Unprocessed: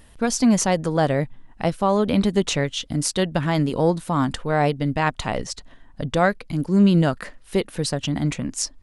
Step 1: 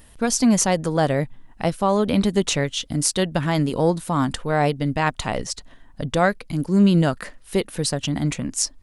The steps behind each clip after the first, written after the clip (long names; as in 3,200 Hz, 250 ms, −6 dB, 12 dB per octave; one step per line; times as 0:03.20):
high-shelf EQ 7,700 Hz +7.5 dB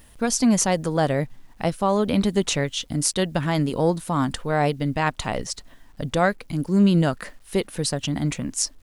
bit-depth reduction 10 bits, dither none
level −1.5 dB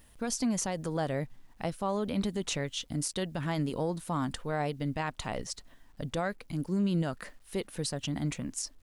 brickwall limiter −14 dBFS, peak gain reduction 8.5 dB
level −8 dB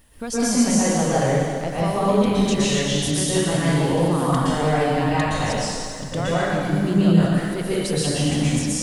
dense smooth reverb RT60 2.2 s, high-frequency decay 0.95×, pre-delay 105 ms, DRR −9.5 dB
level +3 dB